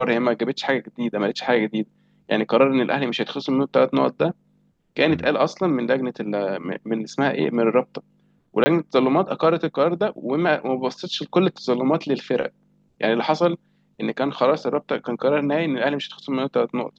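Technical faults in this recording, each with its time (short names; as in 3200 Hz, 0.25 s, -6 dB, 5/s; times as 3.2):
8.64–8.66 gap 20 ms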